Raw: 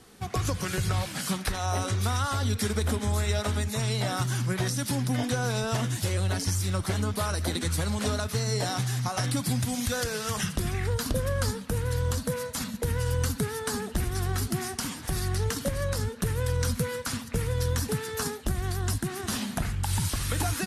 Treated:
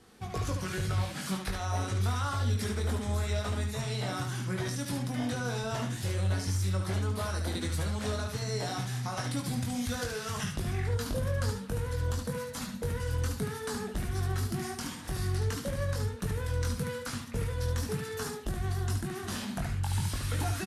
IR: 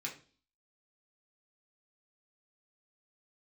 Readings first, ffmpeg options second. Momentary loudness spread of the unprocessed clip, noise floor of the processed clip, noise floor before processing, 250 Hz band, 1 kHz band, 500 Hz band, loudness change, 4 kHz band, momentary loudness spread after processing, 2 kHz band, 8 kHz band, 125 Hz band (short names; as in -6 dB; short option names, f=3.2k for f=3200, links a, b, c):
3 LU, -41 dBFS, -40 dBFS, -4.0 dB, -4.5 dB, -4.5 dB, -4.0 dB, -6.0 dB, 5 LU, -4.5 dB, -7.5 dB, -3.0 dB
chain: -af "highshelf=f=5.9k:g=-5.5,asoftclip=type=tanh:threshold=-17dB,aecho=1:1:21|73:0.562|0.531,volume=-5.5dB"